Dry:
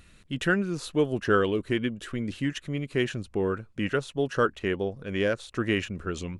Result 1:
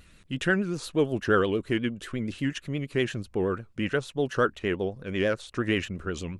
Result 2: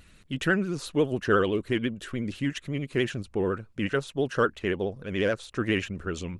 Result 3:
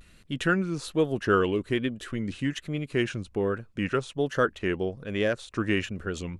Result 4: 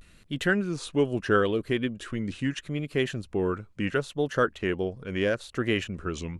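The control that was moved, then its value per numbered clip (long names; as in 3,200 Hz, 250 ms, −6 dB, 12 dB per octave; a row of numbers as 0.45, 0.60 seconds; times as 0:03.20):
pitch vibrato, speed: 8.4, 14, 1.2, 0.76 Hertz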